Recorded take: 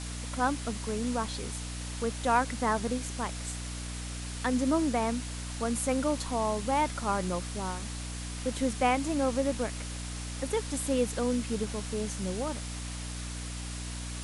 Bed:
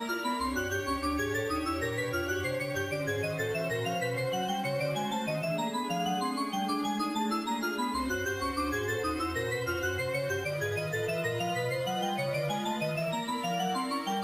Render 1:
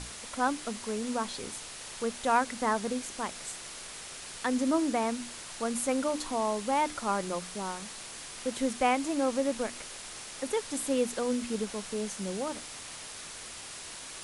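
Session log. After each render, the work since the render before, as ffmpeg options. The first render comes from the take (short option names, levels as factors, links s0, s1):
-af "bandreject=f=60:t=h:w=6,bandreject=f=120:t=h:w=6,bandreject=f=180:t=h:w=6,bandreject=f=240:t=h:w=6,bandreject=f=300:t=h:w=6"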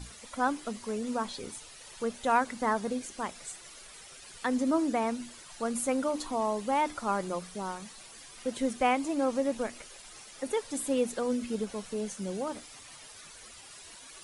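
-af "afftdn=nr=11:nf=-44"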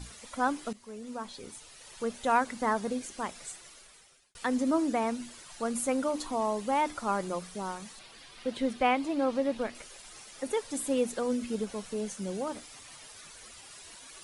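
-filter_complex "[0:a]asettb=1/sr,asplit=3[s0][s1][s2];[s0]atrim=end=7.994[s3];[s1]atrim=start=7.99:end=9.75,asetpts=PTS-STARTPTS,afade=t=in:d=0.004:c=qsin,afade=t=out:st=1.756:d=0.004:c=qsin,highshelf=f=5300:t=q:w=1.5:g=-7[s4];[s2]atrim=start=9.746[s5];[s3][s4]acrossfade=d=0.004:c1=hsin:c2=qsin[s6];[s6][s5]acrossfade=d=0.004:c1=qsin:c2=hsin,asplit=3[s7][s8][s9];[s7]atrim=end=0.73,asetpts=PTS-STARTPTS,afade=t=out:st=0.726:d=0.004:c=hsin:silence=0.223872[s10];[s8]atrim=start=0.73:end=4.35,asetpts=PTS-STARTPTS,afade=t=in:d=1.43:silence=0.223872,afade=t=out:st=2.73:d=0.89[s11];[s9]atrim=start=4.35,asetpts=PTS-STARTPTS,afade=t=in:d=0.004:c=hsin[s12];[s10][s11][s12]concat=n=3:v=0:a=1"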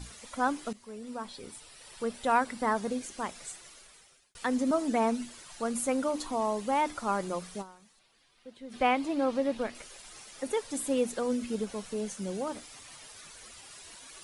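-filter_complex "[0:a]asettb=1/sr,asplit=3[s0][s1][s2];[s0]atrim=end=0.844[s3];[s1]atrim=start=0.84:end=2.75,asetpts=PTS-STARTPTS,afade=t=in:d=0.004:c=qsin,afade=t=out:st=1.906:d=0.004:c=qsin,bandreject=f=6500:w=8.1[s4];[s2]atrim=start=2.746[s5];[s3][s4]acrossfade=d=0.004:c1=hsin:c2=qsin[s6];[s6][s5]acrossfade=d=0.004:c1=qsin:c2=hsin,asettb=1/sr,asplit=3[s7][s8][s9];[s7]atrim=end=4.704[s10];[s8]atrim=start=4.7:end=5.25,asetpts=PTS-STARTPTS,afade=t=in:d=0.004:c=qsin,afade=t=out:st=0.546:d=0.004:c=qsin,aecho=1:1:4.6:0.53,atrim=end_sample=24255[s11];[s9]atrim=start=5.246[s12];[s10][s11]acrossfade=d=0.004:c1=hsin:c2=qsin[s13];[s13][s12]acrossfade=d=0.004:c1=qsin:c2=hsin,asplit=3[s14][s15][s16];[s14]atrim=end=7.79,asetpts=PTS-STARTPTS,afade=t=out:st=7.61:d=0.18:c=exp:silence=0.16788[s17];[s15]atrim=start=7.79:end=8.56,asetpts=PTS-STARTPTS,volume=0.168[s18];[s16]atrim=start=8.56,asetpts=PTS-STARTPTS,afade=t=in:d=0.18:c=exp:silence=0.16788[s19];[s17][s18][s19]concat=n=3:v=0:a=1"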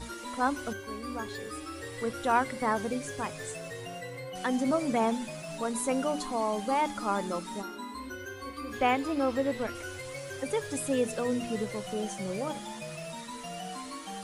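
-filter_complex "[1:a]volume=0.355[s0];[0:a][s0]amix=inputs=2:normalize=0"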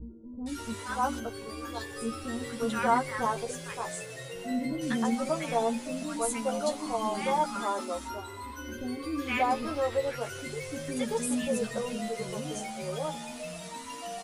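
-filter_complex "[0:a]asplit=2[s0][s1];[s1]adelay=13,volume=0.708[s2];[s0][s2]amix=inputs=2:normalize=0,acrossover=split=360|1400[s3][s4][s5];[s5]adelay=460[s6];[s4]adelay=580[s7];[s3][s7][s6]amix=inputs=3:normalize=0"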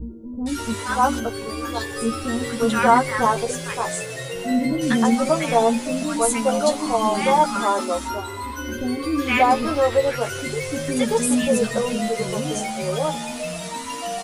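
-af "volume=3.35,alimiter=limit=0.708:level=0:latency=1"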